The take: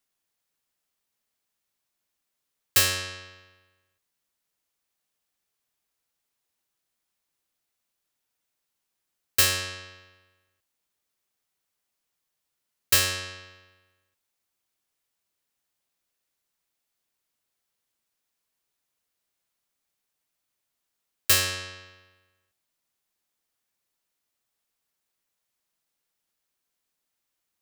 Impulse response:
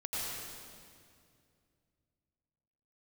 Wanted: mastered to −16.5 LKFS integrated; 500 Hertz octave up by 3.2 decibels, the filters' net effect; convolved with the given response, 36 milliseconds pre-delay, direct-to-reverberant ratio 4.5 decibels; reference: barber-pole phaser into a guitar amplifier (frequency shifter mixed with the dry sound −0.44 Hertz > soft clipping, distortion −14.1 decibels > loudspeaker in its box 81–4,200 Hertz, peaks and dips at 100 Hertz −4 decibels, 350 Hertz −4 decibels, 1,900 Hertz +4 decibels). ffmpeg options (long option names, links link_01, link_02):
-filter_complex "[0:a]equalizer=frequency=500:width_type=o:gain=4.5,asplit=2[link_01][link_02];[1:a]atrim=start_sample=2205,adelay=36[link_03];[link_02][link_03]afir=irnorm=-1:irlink=0,volume=-8.5dB[link_04];[link_01][link_04]amix=inputs=2:normalize=0,asplit=2[link_05][link_06];[link_06]afreqshift=-0.44[link_07];[link_05][link_07]amix=inputs=2:normalize=1,asoftclip=threshold=-17.5dB,highpass=81,equalizer=frequency=100:width_type=q:width=4:gain=-4,equalizer=frequency=350:width_type=q:width=4:gain=-4,equalizer=frequency=1900:width_type=q:width=4:gain=4,lowpass=frequency=4200:width=0.5412,lowpass=frequency=4200:width=1.3066,volume=17dB"